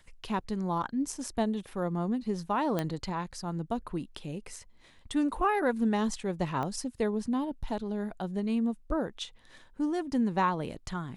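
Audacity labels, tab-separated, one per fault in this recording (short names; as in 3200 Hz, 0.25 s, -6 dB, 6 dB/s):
2.790000	2.790000	pop -16 dBFS
6.630000	6.630000	pop -22 dBFS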